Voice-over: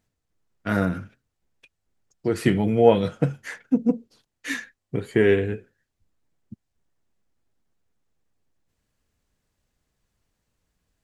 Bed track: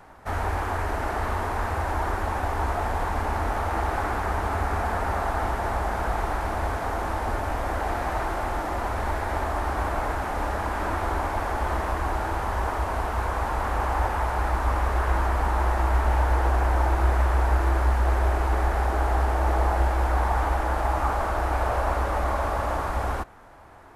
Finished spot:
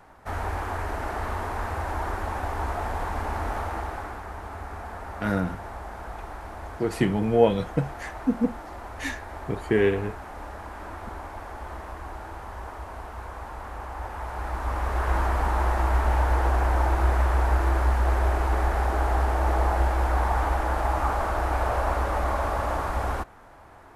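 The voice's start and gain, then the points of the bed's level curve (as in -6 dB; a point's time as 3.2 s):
4.55 s, -3.0 dB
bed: 3.59 s -3 dB
4.25 s -11 dB
13.94 s -11 dB
15.16 s -0.5 dB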